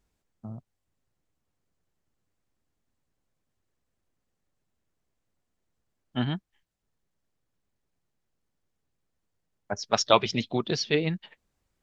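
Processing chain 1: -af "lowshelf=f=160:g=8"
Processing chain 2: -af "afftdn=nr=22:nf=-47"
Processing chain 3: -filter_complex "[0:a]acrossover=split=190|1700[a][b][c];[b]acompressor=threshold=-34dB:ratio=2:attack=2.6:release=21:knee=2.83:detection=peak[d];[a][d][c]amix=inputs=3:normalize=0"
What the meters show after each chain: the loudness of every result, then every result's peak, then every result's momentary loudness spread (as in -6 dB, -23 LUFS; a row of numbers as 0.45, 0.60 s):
-26.5, -27.5, -30.5 LUFS; -2.0, -3.5, -8.5 dBFS; 17, 21, 17 LU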